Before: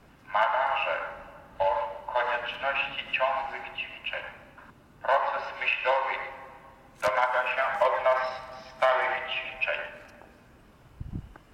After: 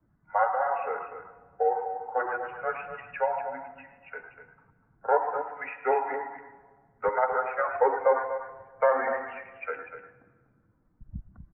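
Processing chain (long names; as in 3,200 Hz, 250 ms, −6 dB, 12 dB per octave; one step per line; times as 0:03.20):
spectral dynamics exaggerated over time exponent 1.5
high-frequency loss of the air 450 metres
single-tap delay 245 ms −10 dB
on a send at −18 dB: convolution reverb RT60 1.7 s, pre-delay 103 ms
on the sum: single-sideband voice off tune −110 Hz 150–2,100 Hz
level +4.5 dB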